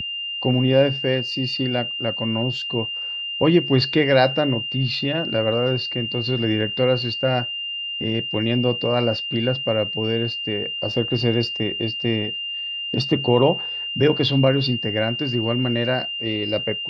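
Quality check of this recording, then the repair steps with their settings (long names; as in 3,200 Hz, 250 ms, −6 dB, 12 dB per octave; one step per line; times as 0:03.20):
whistle 2,800 Hz −26 dBFS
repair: notch filter 2,800 Hz, Q 30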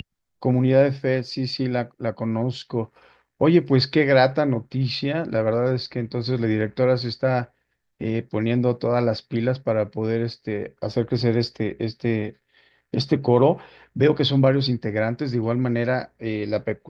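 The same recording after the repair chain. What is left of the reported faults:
none of them is left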